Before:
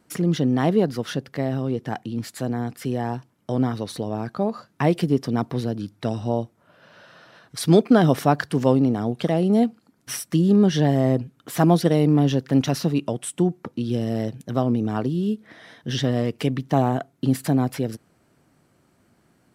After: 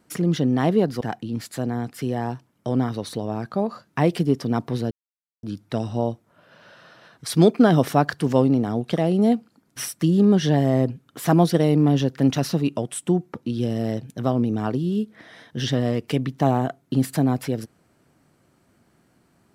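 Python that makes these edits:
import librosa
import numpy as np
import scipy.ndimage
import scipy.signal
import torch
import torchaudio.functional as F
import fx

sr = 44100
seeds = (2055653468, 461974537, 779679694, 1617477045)

y = fx.edit(x, sr, fx.cut(start_s=1.01, length_s=0.83),
    fx.insert_silence(at_s=5.74, length_s=0.52), tone=tone)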